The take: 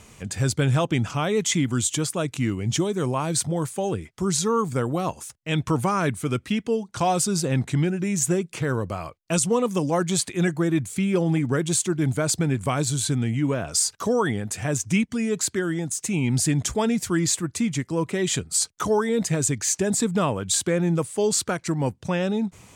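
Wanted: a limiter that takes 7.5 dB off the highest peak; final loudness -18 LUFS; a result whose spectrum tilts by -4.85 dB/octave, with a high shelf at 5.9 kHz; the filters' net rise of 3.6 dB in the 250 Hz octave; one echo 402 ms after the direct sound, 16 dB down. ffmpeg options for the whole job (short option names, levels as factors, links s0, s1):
-af "equalizer=f=250:t=o:g=5,highshelf=f=5900:g=5,alimiter=limit=0.2:level=0:latency=1,aecho=1:1:402:0.158,volume=1.88"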